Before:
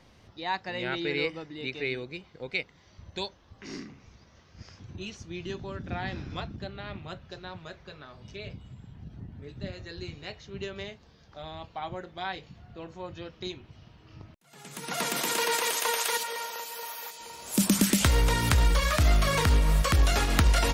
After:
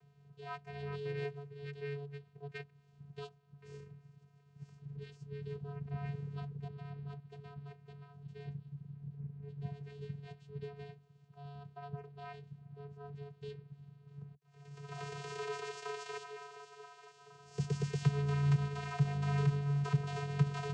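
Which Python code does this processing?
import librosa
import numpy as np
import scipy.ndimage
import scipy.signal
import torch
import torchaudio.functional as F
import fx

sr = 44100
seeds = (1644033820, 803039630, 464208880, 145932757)

y = fx.vocoder(x, sr, bands=8, carrier='square', carrier_hz=142.0)
y = y * 10.0 ** (-6.0 / 20.0)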